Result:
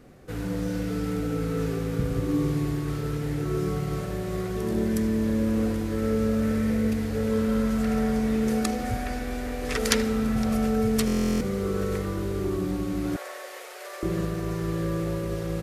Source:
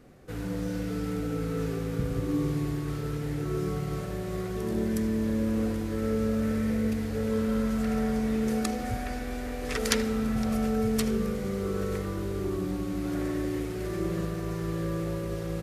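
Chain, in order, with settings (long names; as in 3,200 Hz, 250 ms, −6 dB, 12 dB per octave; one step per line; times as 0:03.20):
0:13.16–0:14.03: Butterworth high-pass 500 Hz 48 dB per octave
buffer that repeats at 0:11.06, samples 1,024, times 14
level +3 dB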